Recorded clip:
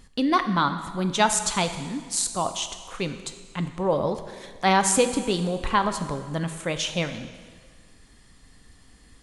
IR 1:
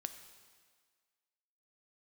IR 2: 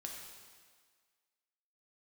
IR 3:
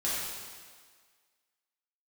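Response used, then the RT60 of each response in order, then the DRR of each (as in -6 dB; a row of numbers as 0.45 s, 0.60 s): 1; 1.7 s, 1.7 s, 1.7 s; 8.0 dB, -0.5 dB, -9.5 dB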